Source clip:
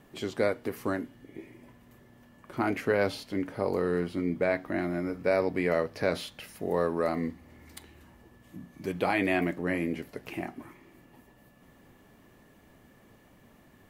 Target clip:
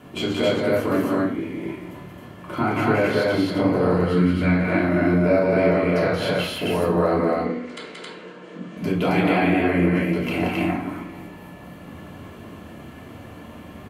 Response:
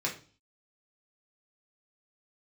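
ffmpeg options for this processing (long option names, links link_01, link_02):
-filter_complex "[0:a]asettb=1/sr,asplit=3[link_01][link_02][link_03];[link_01]atrim=end=3.904[link_04];[link_02]atrim=start=3.9:end=4.59,asetpts=PTS-STARTPTS,afade=type=in:duration=0.004:curve=qsin,afade=type=out:start_time=0.686:duration=0.004:curve=qsin,equalizer=frequency=490:width_type=o:width=1.7:gain=-11.5[link_05];[link_03]atrim=start=4.586[link_06];[link_04][link_05]acrossfade=duration=0.004:curve1=hsin:curve2=qsin[link_07];[link_07][link_06]acrossfade=duration=0.004:curve1=qsin:curve2=hsin,acompressor=threshold=-35dB:ratio=4,asettb=1/sr,asplit=3[link_08][link_09][link_10];[link_08]atrim=end=7.184[link_11];[link_09]atrim=start=7.18:end=8.77,asetpts=PTS-STARTPTS,afade=type=in:duration=0.004:curve=qsin,afade=type=out:start_time=1.586:duration=0.004:curve=qsin,highpass=frequency=210:width=0.5412,highpass=frequency=210:width=1.3066,equalizer=frequency=280:width_type=q:width=4:gain=-8,equalizer=frequency=480:width_type=q:width=4:gain=9,equalizer=frequency=830:width_type=q:width=4:gain=-7,equalizer=frequency=1500:width_type=q:width=4:gain=4,equalizer=frequency=5900:width_type=q:width=4:gain=-3,lowpass=frequency=7100:width=0.5412,lowpass=frequency=7100:width=1.3066[link_12];[link_10]atrim=start=8.766[link_13];[link_11][link_12]acrossfade=duration=0.004:curve1=hsin:curve2=qsin[link_14];[link_14][link_13]acrossfade=duration=0.004:curve1=qsin:curve2=hsin,asettb=1/sr,asplit=3[link_15][link_16][link_17];[link_15]atrim=end=9.934[link_18];[link_16]atrim=start=9.93:end=10.57,asetpts=PTS-STARTPTS,afade=type=in:duration=0.004:curve=qsin,afade=type=out:start_time=0.636:duration=0.004:curve=qsin,acrusher=bits=8:mode=log:mix=0:aa=0.000001[link_19];[link_17]atrim=start=10.566[link_20];[link_18][link_19]acrossfade=duration=0.004:curve1=hsin:curve2=qsin[link_21];[link_21][link_20]acrossfade=duration=0.004:curve1=qsin:curve2=hsin,aecho=1:1:177.8|268.2:0.631|0.891[link_22];[1:a]atrim=start_sample=2205,asetrate=26460,aresample=44100[link_23];[link_22][link_23]afir=irnorm=-1:irlink=0,volume=5dB"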